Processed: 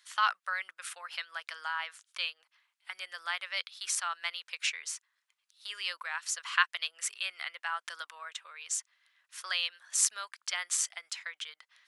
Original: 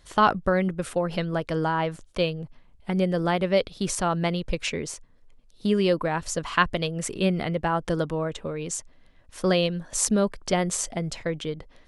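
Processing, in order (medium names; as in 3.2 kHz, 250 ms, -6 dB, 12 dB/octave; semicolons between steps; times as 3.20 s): high-pass 1.3 kHz 24 dB/octave; trim -1.5 dB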